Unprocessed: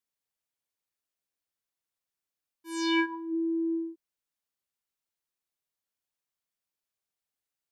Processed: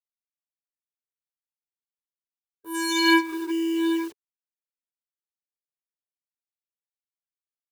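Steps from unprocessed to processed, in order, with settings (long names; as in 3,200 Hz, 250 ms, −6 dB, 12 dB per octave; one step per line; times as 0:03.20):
low-shelf EQ 330 Hz +2.5 dB
notch comb filter 610 Hz
reverb whose tail is shaped and stops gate 180 ms rising, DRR −6.5 dB
in parallel at −7.5 dB: wave folding −31.5 dBFS
on the sum: bit reduction 9 bits
formants moved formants +3 semitones
gain on a spectral selection 0:01.74–0:02.74, 1,600–8,500 Hz −11 dB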